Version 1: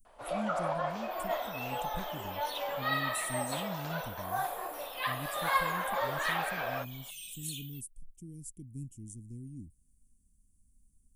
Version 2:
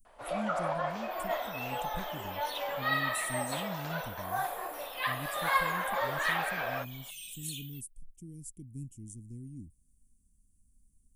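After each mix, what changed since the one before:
master: add peaking EQ 1.9 kHz +3 dB 0.75 oct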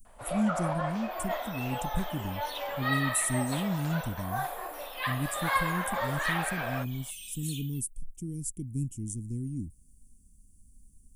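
speech +10.0 dB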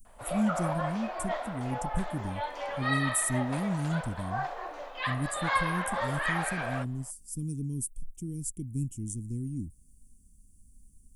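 second sound: muted

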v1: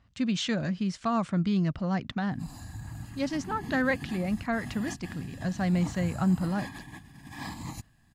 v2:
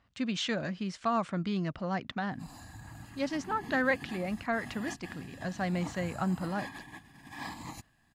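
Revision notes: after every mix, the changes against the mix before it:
master: add tone controls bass -9 dB, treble -4 dB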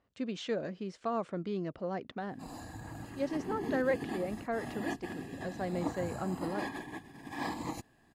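speech -10.0 dB; master: add peaking EQ 430 Hz +14.5 dB 1.3 oct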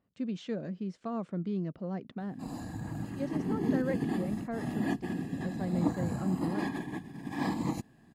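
speech -6.5 dB; master: add peaking EQ 180 Hz +12 dB 1.5 oct

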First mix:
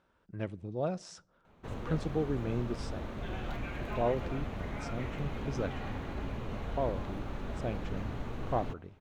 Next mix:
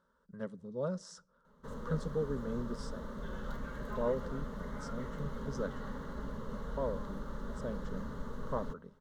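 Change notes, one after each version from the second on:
master: add static phaser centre 490 Hz, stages 8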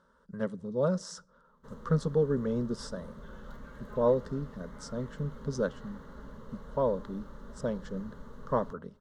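speech +8.0 dB; background -5.5 dB

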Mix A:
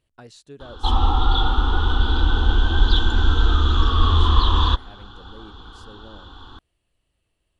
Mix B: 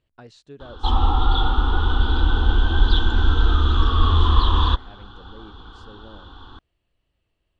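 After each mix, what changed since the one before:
master: add distance through air 100 m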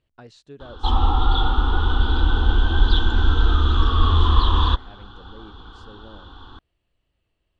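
no change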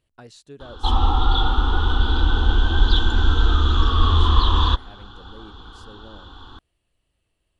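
master: remove distance through air 100 m

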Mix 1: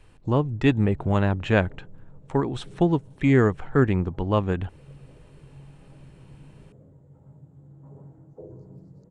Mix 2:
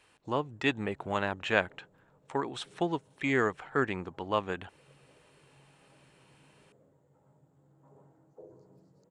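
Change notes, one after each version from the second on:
master: add high-pass 980 Hz 6 dB/octave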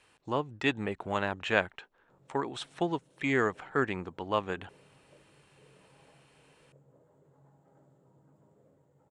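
background: entry +1.85 s

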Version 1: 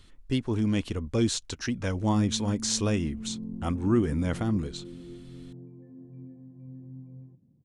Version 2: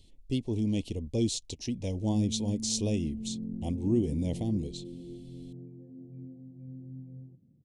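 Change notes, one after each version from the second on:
speech -3.0 dB; master: add Butterworth band-stop 1.4 kHz, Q 0.65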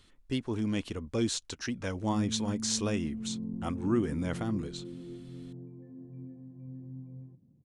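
speech: add bass shelf 120 Hz -8 dB; master: remove Butterworth band-stop 1.4 kHz, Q 0.65

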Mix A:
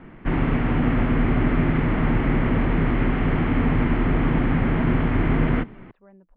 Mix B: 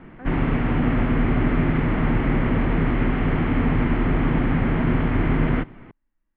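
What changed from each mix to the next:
speech: entry -2.60 s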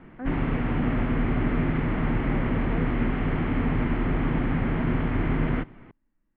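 speech: add peaking EQ 200 Hz +7.5 dB 2.6 oct; background -4.5 dB

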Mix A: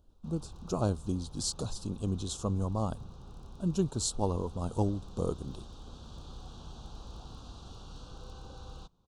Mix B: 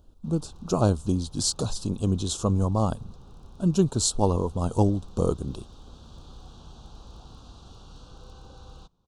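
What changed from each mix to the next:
speech +8.0 dB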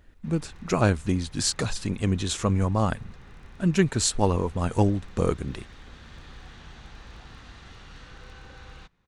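master: remove Butterworth band-stop 2 kHz, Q 0.85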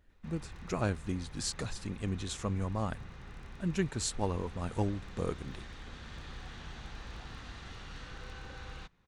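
speech -10.5 dB

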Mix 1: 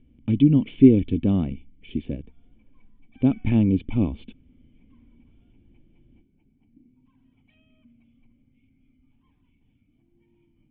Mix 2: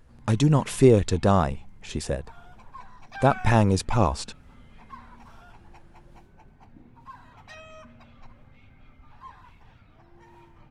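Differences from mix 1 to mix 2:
speech -10.0 dB; master: remove cascade formant filter i

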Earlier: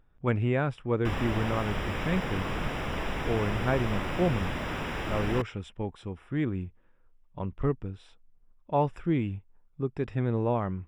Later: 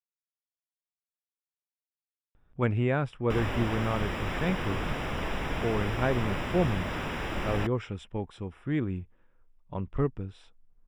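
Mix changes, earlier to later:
speech: entry +2.35 s; background: entry +2.25 s

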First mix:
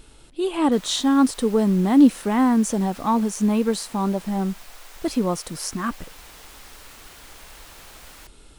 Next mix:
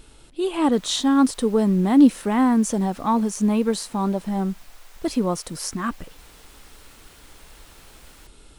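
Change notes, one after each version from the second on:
background -6.0 dB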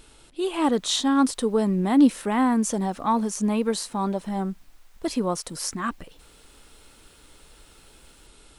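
background -11.5 dB; master: add bass shelf 340 Hz -5.5 dB

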